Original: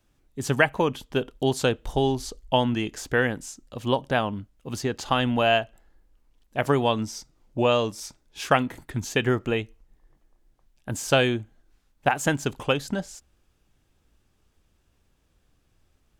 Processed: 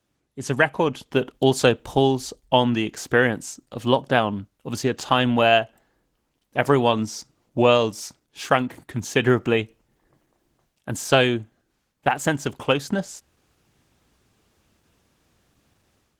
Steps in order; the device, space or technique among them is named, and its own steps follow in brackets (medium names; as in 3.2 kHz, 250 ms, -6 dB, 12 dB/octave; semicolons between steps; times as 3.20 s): 2.67–3.35 s: gate with hold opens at -40 dBFS; video call (high-pass 100 Hz 12 dB/octave; level rider gain up to 9.5 dB; trim -1 dB; Opus 16 kbps 48 kHz)